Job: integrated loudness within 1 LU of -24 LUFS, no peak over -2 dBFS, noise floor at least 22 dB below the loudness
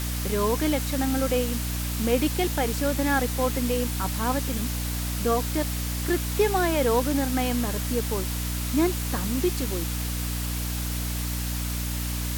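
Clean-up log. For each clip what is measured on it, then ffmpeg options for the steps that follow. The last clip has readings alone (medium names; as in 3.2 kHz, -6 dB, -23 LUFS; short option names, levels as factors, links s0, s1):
hum 60 Hz; highest harmonic 300 Hz; hum level -27 dBFS; noise floor -29 dBFS; noise floor target -48 dBFS; loudness -26.0 LUFS; peak level -10.0 dBFS; loudness target -24.0 LUFS
-> -af "bandreject=f=60:t=h:w=6,bandreject=f=120:t=h:w=6,bandreject=f=180:t=h:w=6,bandreject=f=240:t=h:w=6,bandreject=f=300:t=h:w=6"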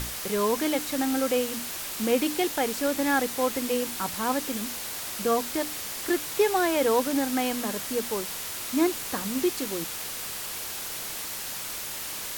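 hum not found; noise floor -35 dBFS; noise floor target -50 dBFS
-> -af "afftdn=nr=15:nf=-35"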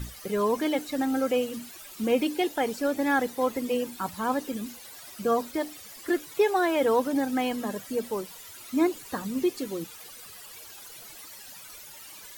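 noise floor -46 dBFS; noise floor target -50 dBFS
-> -af "afftdn=nr=6:nf=-46"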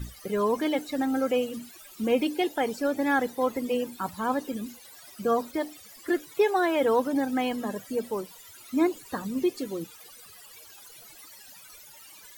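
noise floor -50 dBFS; loudness -28.0 LUFS; peak level -12.0 dBFS; loudness target -24.0 LUFS
-> -af "volume=1.58"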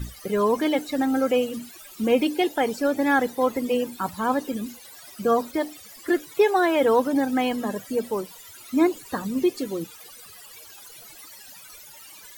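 loudness -24.0 LUFS; peak level -8.0 dBFS; noise floor -46 dBFS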